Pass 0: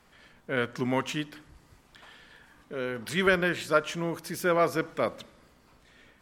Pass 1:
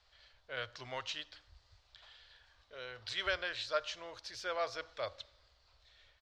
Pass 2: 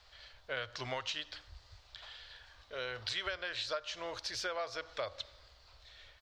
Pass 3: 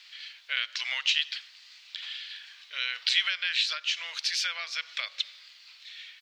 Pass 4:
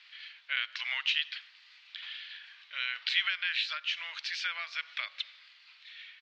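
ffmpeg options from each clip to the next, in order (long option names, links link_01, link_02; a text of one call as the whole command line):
ffmpeg -i in.wav -af "firequalizer=gain_entry='entry(100,0);entry(160,-30);entry(590,-4);entry(940,-7);entry(1500,-5);entry(2200,-5);entry(4100,8);entry(11000,-27)':delay=0.05:min_phase=1,volume=-5.5dB" out.wav
ffmpeg -i in.wav -af "acompressor=threshold=-42dB:ratio=12,volume=8dB" out.wav
ffmpeg -i in.wav -af "highpass=frequency=2400:width_type=q:width=2.2,volume=9dB" out.wav
ffmpeg -i in.wav -af "highpass=780,lowpass=2800" out.wav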